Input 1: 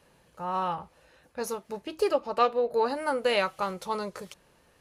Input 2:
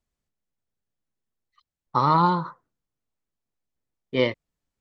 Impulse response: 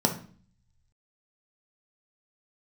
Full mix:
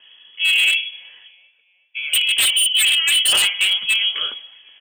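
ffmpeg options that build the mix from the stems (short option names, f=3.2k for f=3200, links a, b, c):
-filter_complex "[0:a]volume=2.5dB,asplit=3[a][b][c];[a]atrim=end=1.31,asetpts=PTS-STARTPTS,afade=t=out:st=1.306:d=0.004:c=hsin[d];[b]atrim=start=1.31:end=2.13,asetpts=PTS-STARTPTS,volume=0[e];[c]atrim=start=2.13,asetpts=PTS-STARTPTS,afade=t=in:d=0.004:c=hsin[f];[d][e][f]concat=n=3:v=0:a=1,asplit=3[g][h][i];[h]volume=-5dB[j];[i]volume=-18.5dB[k];[1:a]asplit=2[l][m];[m]adelay=11.8,afreqshift=-0.6[n];[l][n]amix=inputs=2:normalize=1,volume=-3dB[o];[2:a]atrim=start_sample=2205[p];[j][p]afir=irnorm=-1:irlink=0[q];[k]aecho=0:1:374|748|1122|1496|1870|2244:1|0.4|0.16|0.064|0.0256|0.0102[r];[g][o][q][r]amix=inputs=4:normalize=0,lowpass=f=3k:t=q:w=0.5098,lowpass=f=3k:t=q:w=0.6013,lowpass=f=3k:t=q:w=0.9,lowpass=f=3k:t=q:w=2.563,afreqshift=-3500,aeval=exprs='0.299*(abs(mod(val(0)/0.299+3,4)-2)-1)':c=same"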